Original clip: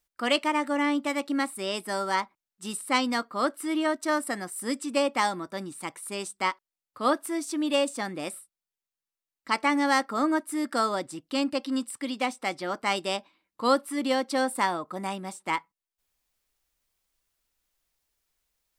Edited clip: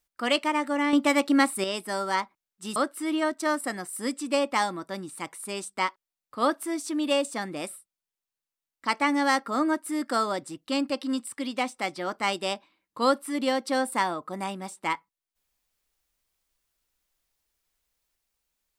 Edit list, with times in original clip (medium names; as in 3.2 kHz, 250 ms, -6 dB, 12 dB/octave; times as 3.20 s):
0.93–1.64 s: gain +6.5 dB
2.76–3.39 s: delete